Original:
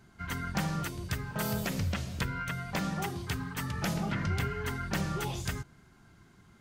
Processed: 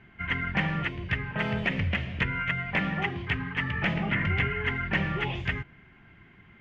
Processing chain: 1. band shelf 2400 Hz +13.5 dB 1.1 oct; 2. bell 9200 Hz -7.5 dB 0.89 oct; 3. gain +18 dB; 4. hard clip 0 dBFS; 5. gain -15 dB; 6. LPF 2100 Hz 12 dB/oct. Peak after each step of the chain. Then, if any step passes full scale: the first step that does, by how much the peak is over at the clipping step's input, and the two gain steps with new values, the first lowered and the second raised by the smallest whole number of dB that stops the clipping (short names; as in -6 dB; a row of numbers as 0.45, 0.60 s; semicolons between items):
-10.0, -10.0, +8.0, 0.0, -15.0, -15.0 dBFS; step 3, 8.0 dB; step 3 +10 dB, step 5 -7 dB